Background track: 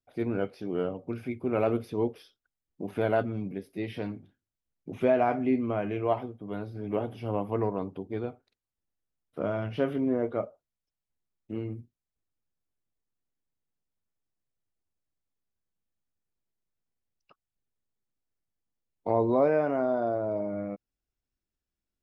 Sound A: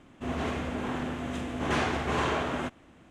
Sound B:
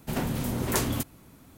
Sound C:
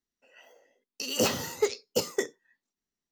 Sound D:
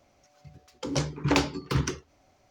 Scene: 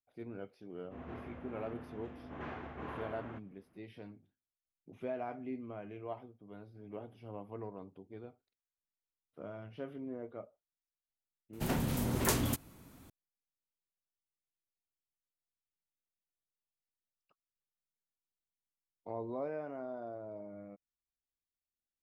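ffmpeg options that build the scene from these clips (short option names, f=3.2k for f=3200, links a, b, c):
-filter_complex "[0:a]volume=-15.5dB[a];[1:a]lowpass=2k,atrim=end=3.1,asetpts=PTS-STARTPTS,volume=-15.5dB,afade=t=in:d=0.004:c=hsin,afade=t=out:st=3.096:d=0.004:c=hsin,adelay=700[b];[2:a]atrim=end=1.57,asetpts=PTS-STARTPTS,volume=-4dB,afade=t=in:d=0.004:c=hsin,afade=t=out:st=1.566:d=0.004:c=hsin,adelay=11530[c];[a][b][c]amix=inputs=3:normalize=0"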